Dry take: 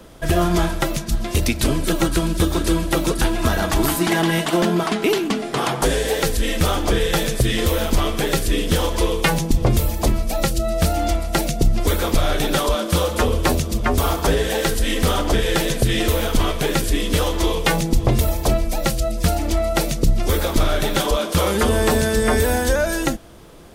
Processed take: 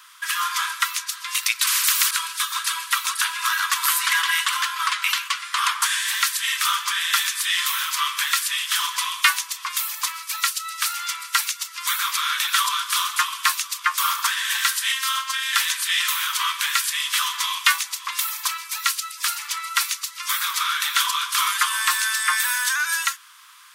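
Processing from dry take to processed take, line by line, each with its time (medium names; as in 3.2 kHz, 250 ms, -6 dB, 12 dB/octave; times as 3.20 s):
1.67–2.11 s: spectrum-flattening compressor 10:1
14.92–15.53 s: robot voice 265 Hz
whole clip: steep high-pass 1 kHz 96 dB/octave; trim +4 dB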